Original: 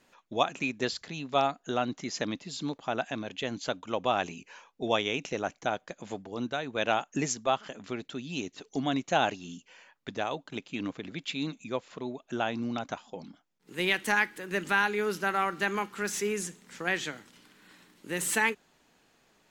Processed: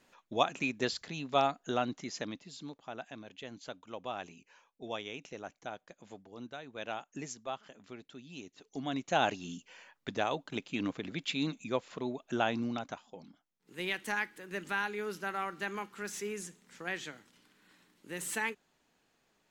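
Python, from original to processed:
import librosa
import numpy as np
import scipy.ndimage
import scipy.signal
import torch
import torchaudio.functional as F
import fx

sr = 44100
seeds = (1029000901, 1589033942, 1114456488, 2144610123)

y = fx.gain(x, sr, db=fx.line((1.75, -2.0), (2.76, -12.0), (8.51, -12.0), (9.4, 0.0), (12.53, 0.0), (13.07, -8.0)))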